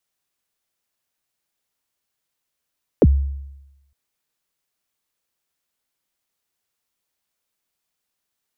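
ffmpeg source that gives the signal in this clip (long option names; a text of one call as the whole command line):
ffmpeg -f lavfi -i "aevalsrc='0.473*pow(10,-3*t/0.97)*sin(2*PI*(580*0.042/log(69/580)*(exp(log(69/580)*min(t,0.042)/0.042)-1)+69*max(t-0.042,0)))':duration=0.91:sample_rate=44100" out.wav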